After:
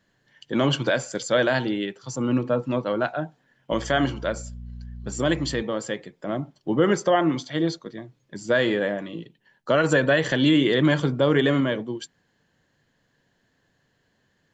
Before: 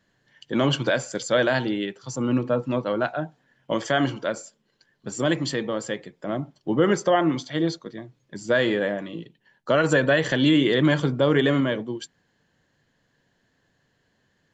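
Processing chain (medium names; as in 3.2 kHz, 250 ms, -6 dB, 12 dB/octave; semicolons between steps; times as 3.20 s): 3.71–5.61 s: mains buzz 60 Hz, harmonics 4, -37 dBFS -7 dB/octave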